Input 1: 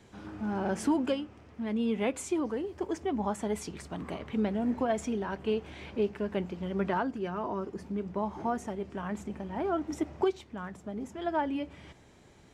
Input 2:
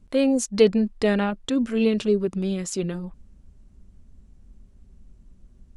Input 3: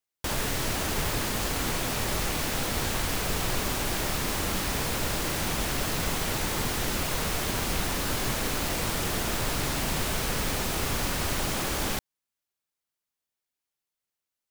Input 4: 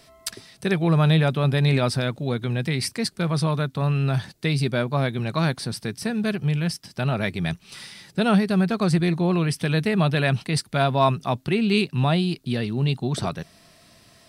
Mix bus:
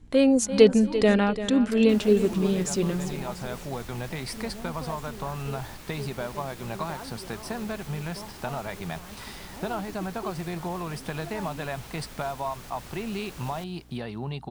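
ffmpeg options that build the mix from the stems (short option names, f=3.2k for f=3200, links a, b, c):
-filter_complex "[0:a]volume=-11dB[a];[1:a]volume=1dB,asplit=3[b][c][d];[c]volume=-12dB[e];[2:a]alimiter=limit=-20dB:level=0:latency=1:release=172,adelay=1650,volume=-14dB,asplit=2[f][g];[g]volume=-17dB[h];[3:a]equalizer=f=880:t=o:w=1.3:g=15,acompressor=threshold=-24dB:ratio=6,adelay=1450,volume=-6dB[i];[d]apad=whole_len=693990[j];[i][j]sidechaincompress=threshold=-27dB:ratio=8:attack=16:release=1060[k];[e][h]amix=inputs=2:normalize=0,aecho=0:1:342|684|1026|1368:1|0.31|0.0961|0.0298[l];[a][b][f][k][l]amix=inputs=5:normalize=0,aeval=exprs='val(0)+0.00251*(sin(2*PI*60*n/s)+sin(2*PI*2*60*n/s)/2+sin(2*PI*3*60*n/s)/3+sin(2*PI*4*60*n/s)/4+sin(2*PI*5*60*n/s)/5)':c=same"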